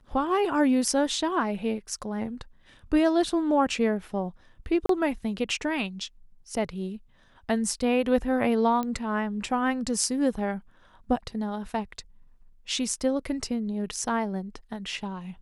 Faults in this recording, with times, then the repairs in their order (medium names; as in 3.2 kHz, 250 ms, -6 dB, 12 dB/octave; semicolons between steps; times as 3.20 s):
4.86–4.89 s: dropout 33 ms
8.83 s: pop -18 dBFS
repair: de-click; interpolate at 4.86 s, 33 ms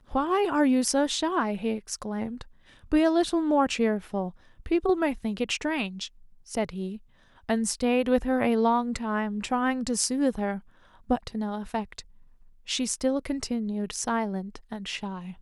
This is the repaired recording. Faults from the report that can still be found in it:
nothing left